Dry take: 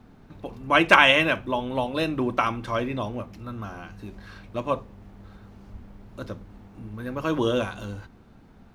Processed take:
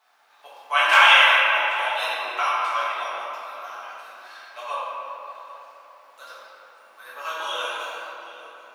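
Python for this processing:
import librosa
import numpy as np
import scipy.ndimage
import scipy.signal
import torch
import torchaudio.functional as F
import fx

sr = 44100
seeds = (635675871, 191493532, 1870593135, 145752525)

p1 = scipy.signal.sosfilt(scipy.signal.butter(4, 790.0, 'highpass', fs=sr, output='sos'), x)
p2 = fx.high_shelf(p1, sr, hz=4300.0, db=7.0)
p3 = p2 + fx.echo_single(p2, sr, ms=783, db=-19.5, dry=0)
p4 = fx.room_shoebox(p3, sr, seeds[0], volume_m3=170.0, walls='hard', distance_m=1.5)
y = p4 * librosa.db_to_amplitude(-6.5)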